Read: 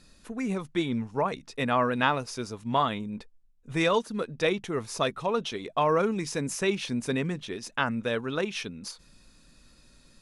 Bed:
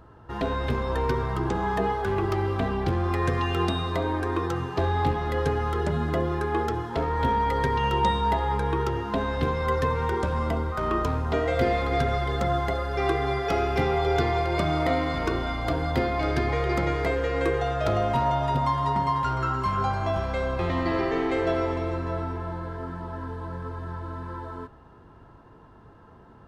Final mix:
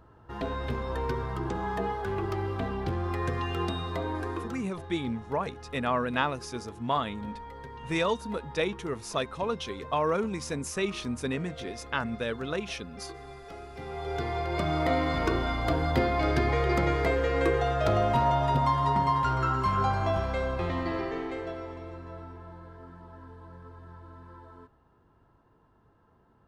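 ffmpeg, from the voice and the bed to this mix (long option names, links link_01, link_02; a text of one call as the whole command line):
ffmpeg -i stem1.wav -i stem2.wav -filter_complex "[0:a]adelay=4150,volume=-3dB[link_01];[1:a]volume=13dB,afade=type=out:start_time=4.24:duration=0.47:silence=0.211349,afade=type=in:start_time=13.76:duration=1.4:silence=0.11885,afade=type=out:start_time=20:duration=1.56:silence=0.237137[link_02];[link_01][link_02]amix=inputs=2:normalize=0" out.wav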